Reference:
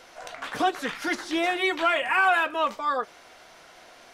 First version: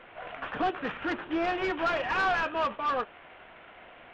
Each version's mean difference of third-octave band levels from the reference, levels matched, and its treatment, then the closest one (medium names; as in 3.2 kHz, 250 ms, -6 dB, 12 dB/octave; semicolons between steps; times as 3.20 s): 8.5 dB: CVSD coder 16 kbps; saturation -21.5 dBFS, distortion -14 dB; dynamic bell 2.1 kHz, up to -7 dB, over -50 dBFS, Q 5.9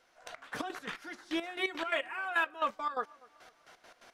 5.0 dB: peaking EQ 1.5 kHz +3 dB 0.62 oct; trance gate "...x..x.x.x." 172 bpm -12 dB; on a send: filtered feedback delay 246 ms, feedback 49%, low-pass 2 kHz, level -23 dB; on the sum: trim -6.5 dB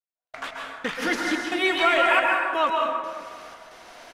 6.0 dB: trance gate "..x..xxx.xxxx" 89 bpm -60 dB; feedback delay 268 ms, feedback 56%, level -18.5 dB; plate-style reverb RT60 1.5 s, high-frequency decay 0.5×, pre-delay 120 ms, DRR -0.5 dB; trim +2 dB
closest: second